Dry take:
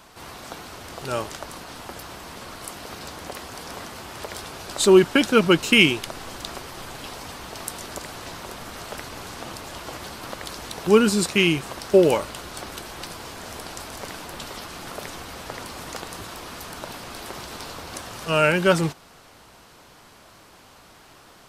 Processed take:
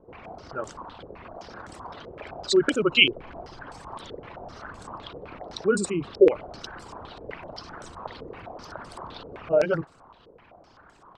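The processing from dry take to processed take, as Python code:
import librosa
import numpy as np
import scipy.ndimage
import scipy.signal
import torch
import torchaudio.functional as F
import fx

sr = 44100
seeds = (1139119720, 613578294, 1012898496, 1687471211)

y = fx.envelope_sharpen(x, sr, power=2.0)
y = fx.stretch_grains(y, sr, factor=0.52, grain_ms=63.0)
y = fx.filter_held_lowpass(y, sr, hz=7.8, low_hz=470.0, high_hz=8000.0)
y = y * 10.0 ** (-5.5 / 20.0)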